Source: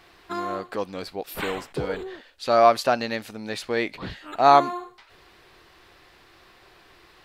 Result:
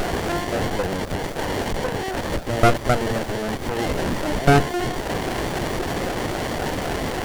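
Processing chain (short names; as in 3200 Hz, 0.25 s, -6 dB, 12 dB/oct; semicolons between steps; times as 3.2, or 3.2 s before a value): delta modulation 64 kbps, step -14.5 dBFS; LFO high-pass saw up 3.8 Hz 560–2300 Hz; running maximum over 33 samples; gain -1.5 dB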